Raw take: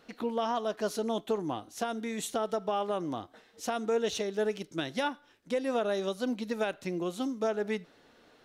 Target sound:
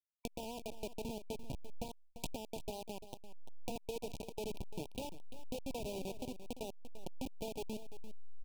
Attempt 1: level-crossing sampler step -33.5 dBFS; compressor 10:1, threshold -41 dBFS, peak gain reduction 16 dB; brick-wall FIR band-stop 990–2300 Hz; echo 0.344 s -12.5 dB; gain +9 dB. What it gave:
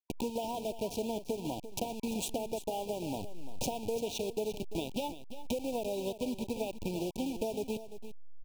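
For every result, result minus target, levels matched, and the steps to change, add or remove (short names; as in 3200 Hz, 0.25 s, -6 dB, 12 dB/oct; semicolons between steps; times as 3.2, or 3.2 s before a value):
level-crossing sampler: distortion -13 dB; compressor: peak gain reduction -7 dB
change: level-crossing sampler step -23.5 dBFS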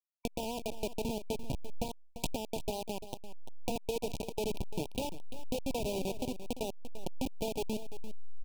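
compressor: peak gain reduction -7 dB
change: compressor 10:1, threshold -49 dBFS, peak gain reduction 23 dB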